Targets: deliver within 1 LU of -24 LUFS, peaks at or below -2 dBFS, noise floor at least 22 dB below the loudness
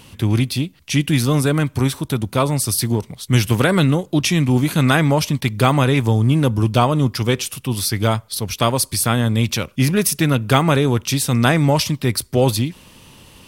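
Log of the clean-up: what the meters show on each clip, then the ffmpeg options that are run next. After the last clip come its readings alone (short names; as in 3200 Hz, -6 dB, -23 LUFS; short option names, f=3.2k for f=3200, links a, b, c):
loudness -18.0 LUFS; peak -1.5 dBFS; loudness target -24.0 LUFS
-> -af "volume=-6dB"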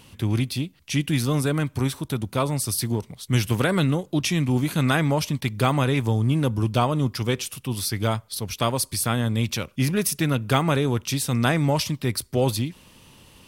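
loudness -24.0 LUFS; peak -7.5 dBFS; noise floor -54 dBFS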